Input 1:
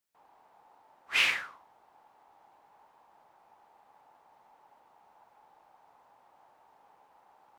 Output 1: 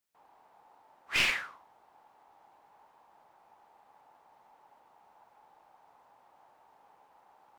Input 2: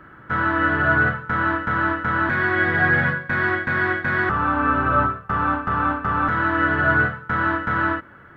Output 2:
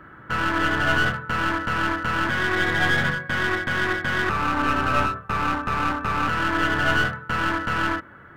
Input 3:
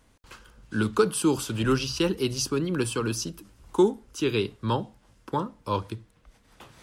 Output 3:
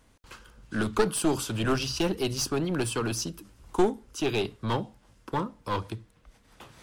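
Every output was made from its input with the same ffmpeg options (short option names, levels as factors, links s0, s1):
-af "aeval=exprs='clip(val(0),-1,0.0501)':c=same"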